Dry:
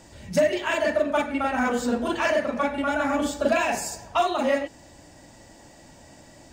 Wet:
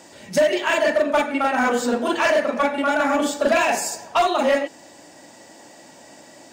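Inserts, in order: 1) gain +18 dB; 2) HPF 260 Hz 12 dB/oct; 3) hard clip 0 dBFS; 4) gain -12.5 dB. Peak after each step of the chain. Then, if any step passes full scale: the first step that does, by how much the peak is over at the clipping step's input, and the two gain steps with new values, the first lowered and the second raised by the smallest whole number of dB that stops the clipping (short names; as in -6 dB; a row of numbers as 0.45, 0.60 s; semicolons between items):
+5.5, +7.5, 0.0, -12.5 dBFS; step 1, 7.5 dB; step 1 +10 dB, step 4 -4.5 dB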